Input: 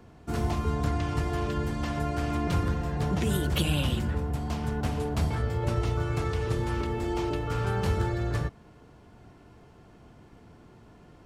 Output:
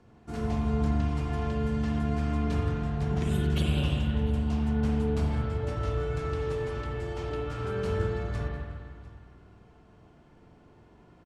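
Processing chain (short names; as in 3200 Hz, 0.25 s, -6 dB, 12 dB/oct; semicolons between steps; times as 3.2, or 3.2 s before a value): LPF 9500 Hz 12 dB/oct; echo 0.7 s -20.5 dB; spring tank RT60 1.8 s, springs 41/50 ms, chirp 45 ms, DRR -1 dB; gain -7 dB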